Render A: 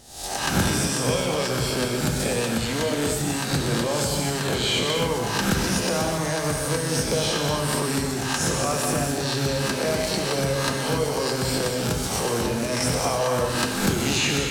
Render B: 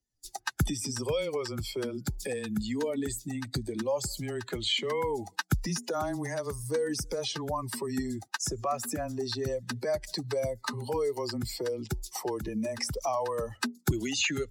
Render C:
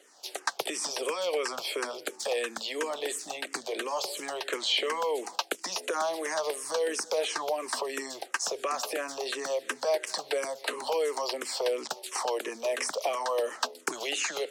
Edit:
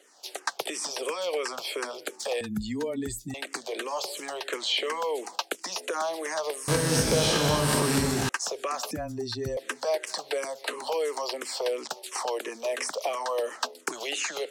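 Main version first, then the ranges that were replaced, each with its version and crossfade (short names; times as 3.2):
C
2.41–3.34 from B
6.68–8.29 from A
8.91–9.57 from B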